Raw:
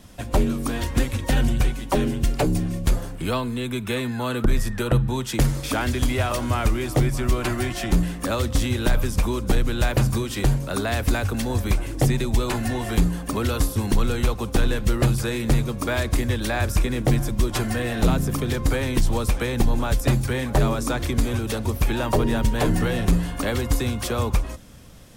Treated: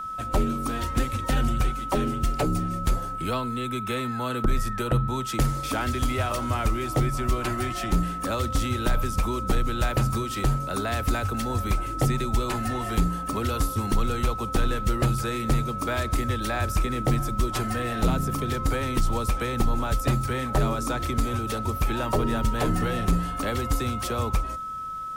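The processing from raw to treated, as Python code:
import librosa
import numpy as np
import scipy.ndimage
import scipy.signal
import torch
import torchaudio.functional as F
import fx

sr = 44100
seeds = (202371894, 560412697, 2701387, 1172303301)

y = x + 10.0 ** (-27.0 / 20.0) * np.sin(2.0 * np.pi * 1300.0 * np.arange(len(x)) / sr)
y = y * 10.0 ** (-4.0 / 20.0)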